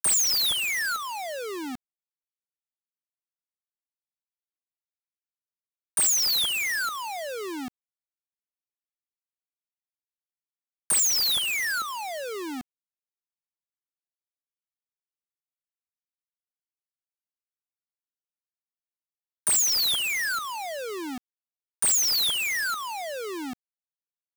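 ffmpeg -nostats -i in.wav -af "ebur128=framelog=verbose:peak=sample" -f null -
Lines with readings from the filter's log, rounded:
Integrated loudness:
  I:         -23.9 LUFS
  Threshold: -34.6 LUFS
Loudness range:
  LRA:        15.0 LU
  Threshold: -47.5 LUFS
  LRA low:   -39.7 LUFS
  LRA high:  -24.7 LUFS
Sample peak:
  Peak:      -21.2 dBFS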